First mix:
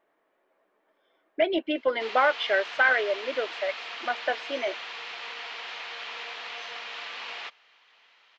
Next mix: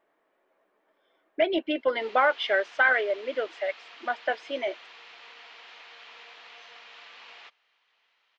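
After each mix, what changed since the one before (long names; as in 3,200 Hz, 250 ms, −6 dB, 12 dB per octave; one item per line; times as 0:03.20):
background −10.5 dB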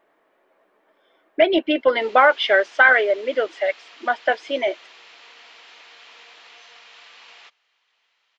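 speech +8.0 dB
background: remove high-frequency loss of the air 120 metres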